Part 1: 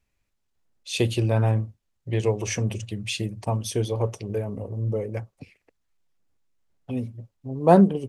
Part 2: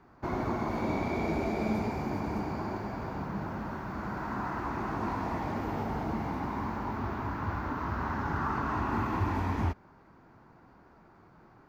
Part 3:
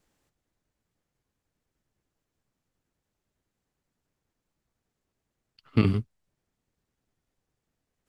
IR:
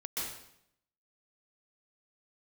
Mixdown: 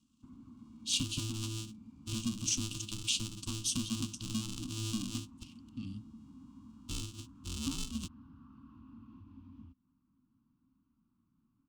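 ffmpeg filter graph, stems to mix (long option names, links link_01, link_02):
-filter_complex "[0:a]alimiter=limit=-13dB:level=0:latency=1:release=278,acompressor=threshold=-26dB:ratio=10,aeval=exprs='val(0)*sgn(sin(2*PI*220*n/s))':channel_layout=same,volume=-6dB[link_01];[1:a]acompressor=threshold=-35dB:ratio=4,lowpass=1900,volume=-17.5dB[link_02];[2:a]alimiter=limit=-13.5dB:level=0:latency=1:release=26,asoftclip=type=tanh:threshold=-19dB,volume=-18dB[link_03];[link_01][link_02][link_03]amix=inputs=3:normalize=0,firequalizer=gain_entry='entry(160,0);entry(260,10);entry(390,-23);entry(680,-30);entry(1100,-7);entry(1900,-24);entry(2800,6);entry(3900,6);entry(7500,10);entry(13000,-4)':delay=0.05:min_phase=1"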